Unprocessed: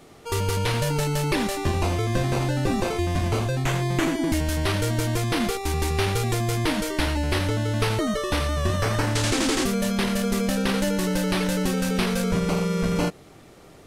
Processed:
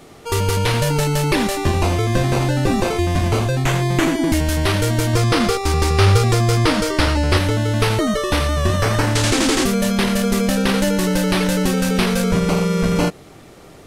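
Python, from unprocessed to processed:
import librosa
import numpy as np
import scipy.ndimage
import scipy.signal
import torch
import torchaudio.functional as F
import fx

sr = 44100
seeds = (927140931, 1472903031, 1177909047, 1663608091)

y = fx.graphic_eq_31(x, sr, hz=(100, 500, 1250, 5000, 12500), db=(9, 6, 7, 5, -7), at=(5.13, 7.37))
y = F.gain(torch.from_numpy(y), 6.0).numpy()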